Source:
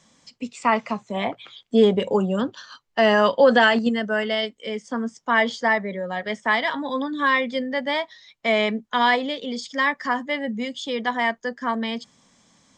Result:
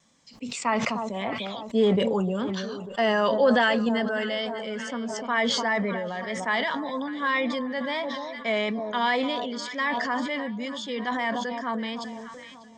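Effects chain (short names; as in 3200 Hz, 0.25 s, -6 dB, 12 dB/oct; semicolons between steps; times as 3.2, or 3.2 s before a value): echo with dull and thin repeats by turns 0.298 s, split 1100 Hz, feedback 65%, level -13 dB; wow and flutter 27 cents; sustainer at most 23 dB/s; gain -6 dB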